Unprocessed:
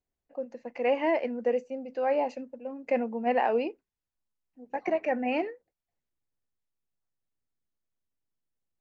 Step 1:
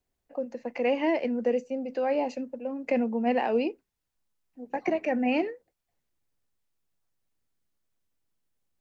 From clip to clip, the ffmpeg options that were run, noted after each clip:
-filter_complex "[0:a]acrossover=split=350|3000[s0][s1][s2];[s1]acompressor=threshold=0.00891:ratio=2[s3];[s0][s3][s2]amix=inputs=3:normalize=0,volume=2.11"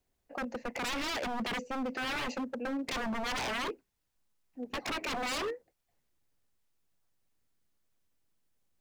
-af "aeval=exprs='0.0266*(abs(mod(val(0)/0.0266+3,4)-2)-1)':c=same,volume=1.26"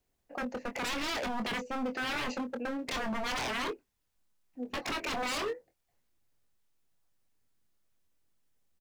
-filter_complex "[0:a]asplit=2[s0][s1];[s1]adelay=24,volume=0.398[s2];[s0][s2]amix=inputs=2:normalize=0"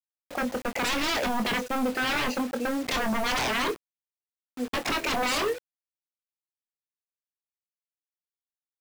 -af "acrusher=bits=7:mix=0:aa=0.000001,volume=2.24"

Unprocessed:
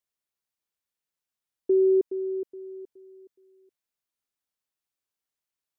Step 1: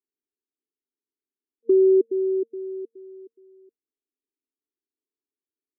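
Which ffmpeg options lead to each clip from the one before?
-filter_complex "[0:a]afftfilt=real='re*between(b*sr/4096,230,460)':imag='im*between(b*sr/4096,230,460)':win_size=4096:overlap=0.75,asplit=2[s0][s1];[s1]acompressor=threshold=0.0355:ratio=6,volume=1[s2];[s0][s2]amix=inputs=2:normalize=0,volume=1.19"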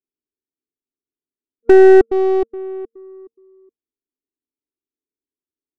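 -af "aeval=exprs='0.299*(cos(1*acos(clip(val(0)/0.299,-1,1)))-cos(1*PI/2))+0.0422*(cos(4*acos(clip(val(0)/0.299,-1,1)))-cos(4*PI/2))+0.015*(cos(7*acos(clip(val(0)/0.299,-1,1)))-cos(7*PI/2))':c=same,adynamicsmooth=sensitivity=5.5:basefreq=500,volume=2.82"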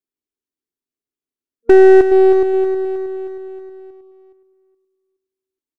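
-af "aecho=1:1:316|632|948|1264|1580|1896:0.355|0.185|0.0959|0.0499|0.0259|0.0135"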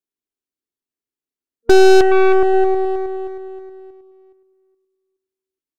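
-af "aeval=exprs='0.891*(cos(1*acos(clip(val(0)/0.891,-1,1)))-cos(1*PI/2))+0.141*(cos(8*acos(clip(val(0)/0.891,-1,1)))-cos(8*PI/2))':c=same,volume=0.794"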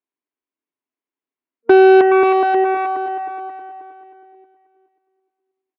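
-af "highpass=190,equalizer=f=280:t=q:w=4:g=4,equalizer=f=620:t=q:w=4:g=4,equalizer=f=1000:t=q:w=4:g=8,equalizer=f=2200:t=q:w=4:g=3,lowpass=f=2900:w=0.5412,lowpass=f=2900:w=1.3066,aecho=1:1:536|1072|1608:0.447|0.0893|0.0179"

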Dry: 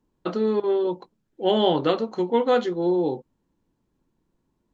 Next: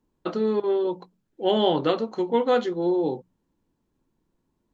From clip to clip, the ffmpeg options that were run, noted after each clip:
-af "bandreject=f=60:t=h:w=6,bandreject=f=120:t=h:w=6,bandreject=f=180:t=h:w=6,volume=0.891"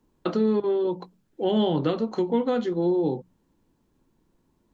-filter_complex "[0:a]acrossover=split=260[s0][s1];[s1]acompressor=threshold=0.0251:ratio=5[s2];[s0][s2]amix=inputs=2:normalize=0,volume=2"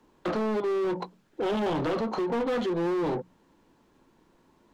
-filter_complex "[0:a]acrossover=split=450|2100[s0][s1][s2];[s2]alimiter=level_in=4.47:limit=0.0631:level=0:latency=1:release=67,volume=0.224[s3];[s0][s1][s3]amix=inputs=3:normalize=0,asoftclip=type=hard:threshold=0.0422,asplit=2[s4][s5];[s5]highpass=f=720:p=1,volume=5.01,asoftclip=type=tanh:threshold=0.0422[s6];[s4][s6]amix=inputs=2:normalize=0,lowpass=f=2700:p=1,volume=0.501,volume=1.58"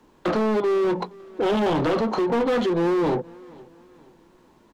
-af "aecho=1:1:472|944|1416:0.0668|0.0267|0.0107,volume=2"

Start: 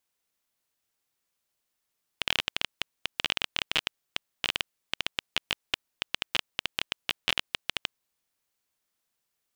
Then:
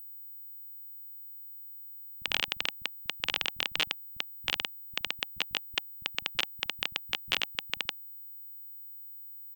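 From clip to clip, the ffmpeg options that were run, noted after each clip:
-filter_complex "[0:a]bandreject=f=810:w=12,acrossover=split=180[s0][s1];[s1]adelay=40[s2];[s0][s2]amix=inputs=2:normalize=0,aeval=exprs='val(0)+0.00891*sin(2*PI*16000*n/s)':c=same,volume=0.841"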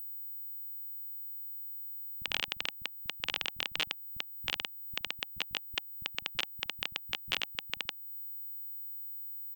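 -af "alimiter=limit=0.133:level=0:latency=1:release=277,volume=1.5"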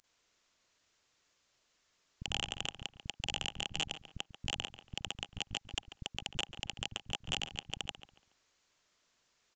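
-filter_complex "[0:a]aresample=16000,volume=37.6,asoftclip=hard,volume=0.0266,aresample=44100,asplit=2[s0][s1];[s1]adelay=141,lowpass=f=2800:p=1,volume=0.282,asplit=2[s2][s3];[s3]adelay=141,lowpass=f=2800:p=1,volume=0.31,asplit=2[s4][s5];[s5]adelay=141,lowpass=f=2800:p=1,volume=0.31[s6];[s0][s2][s4][s6]amix=inputs=4:normalize=0,volume=2.37"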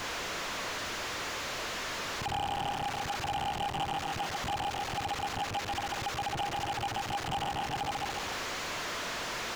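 -filter_complex "[0:a]aeval=exprs='val(0)+0.5*0.015*sgn(val(0))':c=same,asplit=2[s0][s1];[s1]highpass=f=720:p=1,volume=20,asoftclip=type=tanh:threshold=0.119[s2];[s0][s2]amix=inputs=2:normalize=0,lowpass=f=1200:p=1,volume=0.501,volume=0.794"

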